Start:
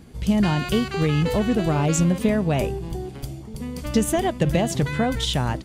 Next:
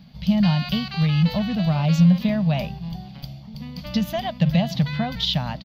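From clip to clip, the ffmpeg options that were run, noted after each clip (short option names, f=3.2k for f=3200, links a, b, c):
-af "firequalizer=gain_entry='entry(110,0);entry(170,15);entry(360,-17);entry(600,6);entry(1400,2);entry(2800,9);entry(4500,14);entry(8700,-25);entry(13000,5)':delay=0.05:min_phase=1,volume=-8dB"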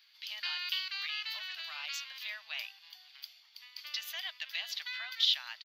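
-af "highpass=f=1.5k:w=0.5412,highpass=f=1.5k:w=1.3066,volume=-3.5dB"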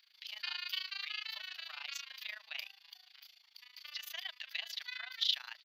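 -af "tremolo=f=27:d=0.889"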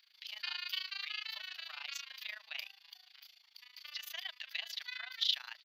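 -af anull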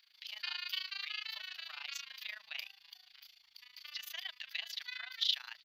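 -af "asubboost=boost=9:cutoff=160"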